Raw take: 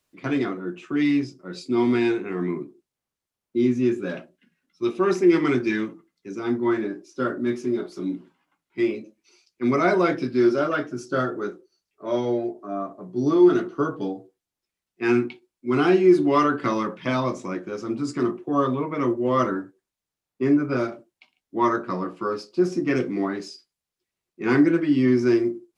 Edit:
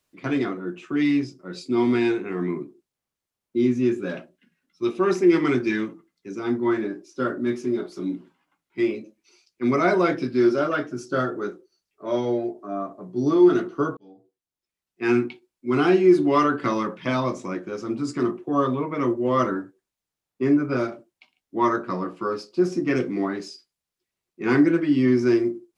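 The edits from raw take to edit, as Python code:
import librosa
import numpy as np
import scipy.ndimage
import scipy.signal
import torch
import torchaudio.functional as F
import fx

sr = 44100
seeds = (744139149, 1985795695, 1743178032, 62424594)

y = fx.edit(x, sr, fx.fade_in_span(start_s=13.97, length_s=1.17), tone=tone)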